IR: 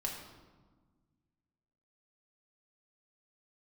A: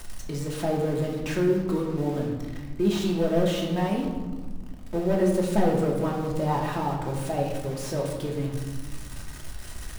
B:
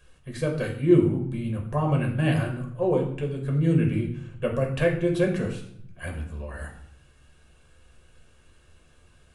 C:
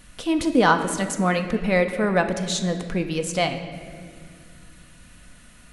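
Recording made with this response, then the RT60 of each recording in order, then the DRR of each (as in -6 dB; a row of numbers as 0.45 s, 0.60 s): A; 1.4 s, 0.65 s, no single decay rate; -1.5 dB, 1.0 dB, 5.5 dB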